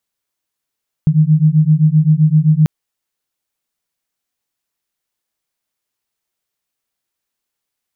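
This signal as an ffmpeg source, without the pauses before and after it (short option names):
-f lavfi -i "aevalsrc='0.282*(sin(2*PI*151*t)+sin(2*PI*158.7*t))':d=1.59:s=44100"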